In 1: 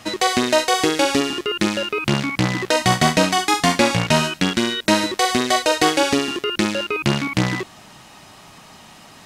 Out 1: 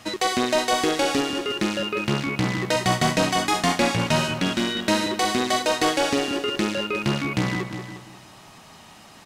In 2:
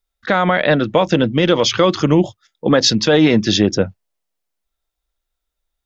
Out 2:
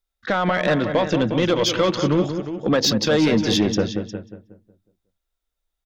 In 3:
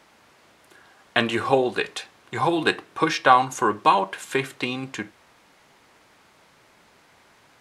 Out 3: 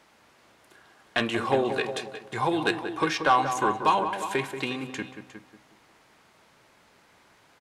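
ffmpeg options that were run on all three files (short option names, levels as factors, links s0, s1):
-filter_complex "[0:a]asplit=2[s0][s1];[s1]aecho=0:1:357:0.2[s2];[s0][s2]amix=inputs=2:normalize=0,asoftclip=type=tanh:threshold=0.422,asplit=2[s3][s4];[s4]adelay=183,lowpass=f=1400:p=1,volume=0.398,asplit=2[s5][s6];[s6]adelay=183,lowpass=f=1400:p=1,volume=0.41,asplit=2[s7][s8];[s8]adelay=183,lowpass=f=1400:p=1,volume=0.41,asplit=2[s9][s10];[s10]adelay=183,lowpass=f=1400:p=1,volume=0.41,asplit=2[s11][s12];[s12]adelay=183,lowpass=f=1400:p=1,volume=0.41[s13];[s5][s7][s9][s11][s13]amix=inputs=5:normalize=0[s14];[s3][s14]amix=inputs=2:normalize=0,volume=0.668"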